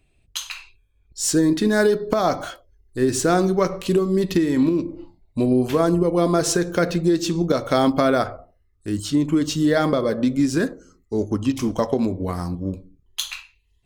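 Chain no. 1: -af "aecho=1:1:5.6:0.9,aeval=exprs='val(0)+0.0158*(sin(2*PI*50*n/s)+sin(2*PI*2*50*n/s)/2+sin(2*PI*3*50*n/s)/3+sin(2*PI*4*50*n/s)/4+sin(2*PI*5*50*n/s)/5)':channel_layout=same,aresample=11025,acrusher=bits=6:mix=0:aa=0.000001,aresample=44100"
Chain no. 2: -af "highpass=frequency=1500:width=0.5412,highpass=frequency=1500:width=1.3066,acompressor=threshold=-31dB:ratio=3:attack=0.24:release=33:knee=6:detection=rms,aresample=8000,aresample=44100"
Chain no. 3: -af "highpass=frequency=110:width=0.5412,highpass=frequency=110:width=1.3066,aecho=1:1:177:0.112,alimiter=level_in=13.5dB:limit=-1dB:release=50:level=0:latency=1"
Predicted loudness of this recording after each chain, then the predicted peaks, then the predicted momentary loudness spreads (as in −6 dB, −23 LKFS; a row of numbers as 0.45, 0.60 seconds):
−18.5, −41.0, −11.5 LKFS; −2.5, −25.5, −1.0 dBFS; 17, 13, 12 LU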